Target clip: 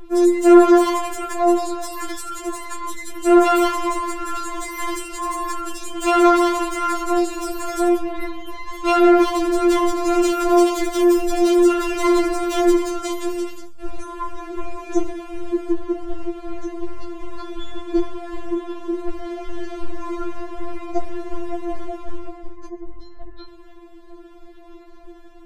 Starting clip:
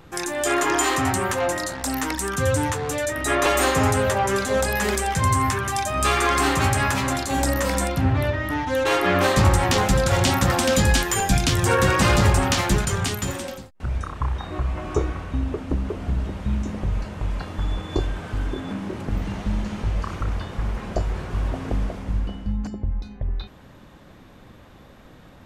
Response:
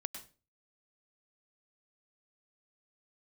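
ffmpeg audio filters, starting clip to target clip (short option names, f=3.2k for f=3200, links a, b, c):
-filter_complex "[0:a]asettb=1/sr,asplit=3[a][b][c];[a]atrim=end=13.584[d];[b]atrim=start=13.58:end=15.72,asetpts=PTS-STARTPTS,afade=t=in:d=0.004:c=qsin,afade=t=out:st=2.136:d=0.004:c=qsin,highshelf=f=4.1k:g=8.5[e];[c]atrim=start=15.716[f];[d][e]acrossfade=d=0.004:c1=hsin:c2=qsin[g];[g][f]acrossfade=d=0.004:c1=qsin:c2=hsin,volume=17.5dB,asoftclip=hard,volume=-17.5dB,tiltshelf=f=670:g=8,asplit=2[h][i];[1:a]atrim=start_sample=2205,asetrate=36603,aresample=44100[j];[i][j]afir=irnorm=-1:irlink=0,volume=-8.5dB[k];[h][k]amix=inputs=2:normalize=0,afftfilt=real='re*4*eq(mod(b,16),0)':imag='im*4*eq(mod(b,16),0)':win_size=2048:overlap=0.75,volume=3.5dB"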